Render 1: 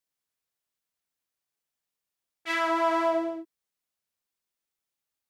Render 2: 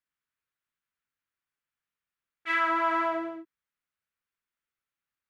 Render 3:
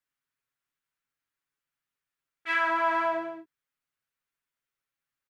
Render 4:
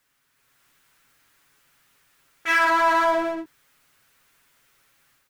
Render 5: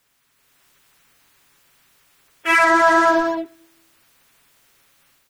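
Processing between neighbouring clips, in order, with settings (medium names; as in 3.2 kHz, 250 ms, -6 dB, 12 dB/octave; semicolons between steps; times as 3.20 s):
FFT filter 120 Hz 0 dB, 740 Hz -7 dB, 1.4 kHz +5 dB, 2.5 kHz 0 dB, 5.2 kHz -11 dB
comb 7.3 ms, depth 51%
level rider gain up to 11 dB; power-law waveshaper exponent 0.7; trim -6 dB
coarse spectral quantiser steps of 30 dB; on a send at -22 dB: reverberation RT60 0.90 s, pre-delay 3 ms; on the sum: trim +5.5 dB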